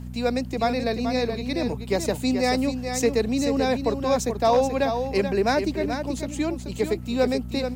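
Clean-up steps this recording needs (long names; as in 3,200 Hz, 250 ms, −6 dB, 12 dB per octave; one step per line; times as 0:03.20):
clipped peaks rebuilt −12 dBFS
hum removal 61.4 Hz, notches 4
downward expander −25 dBFS, range −21 dB
echo removal 432 ms −7.5 dB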